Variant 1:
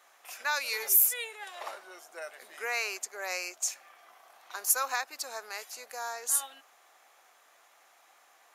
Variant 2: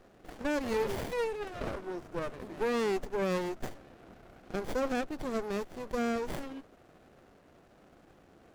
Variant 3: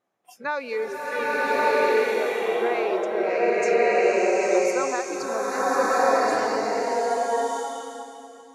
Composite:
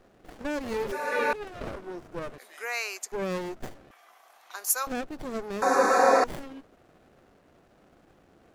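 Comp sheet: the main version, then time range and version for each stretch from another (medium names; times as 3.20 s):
2
0.92–1.33 s: from 3
2.38–3.12 s: from 1
3.91–4.87 s: from 1
5.62–6.24 s: from 3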